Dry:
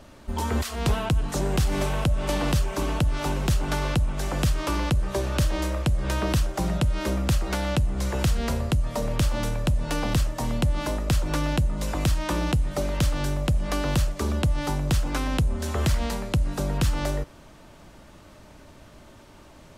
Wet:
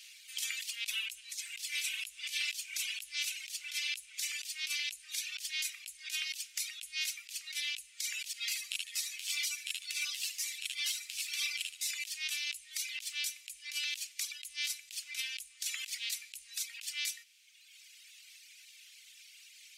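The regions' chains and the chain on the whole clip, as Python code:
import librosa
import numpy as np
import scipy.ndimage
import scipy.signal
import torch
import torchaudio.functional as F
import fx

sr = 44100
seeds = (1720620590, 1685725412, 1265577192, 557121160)

y = fx.chain(x, sr, fx.doubler(ms=23.0, db=-3),
    fx.echo_feedback(ms=75, feedback_pct=50, wet_db=-5),
    fx.ensemble(), at=(8.33, 11.91))
y = fx.dereverb_blind(y, sr, rt60_s=1.4)
y = scipy.signal.sosfilt(scipy.signal.ellip(4, 1.0, 70, 2300.0, 'highpass', fs=sr, output='sos'), y)
y = fx.over_compress(y, sr, threshold_db=-41.0, ratio=-0.5)
y = F.gain(torch.from_numpy(y), 5.0).numpy()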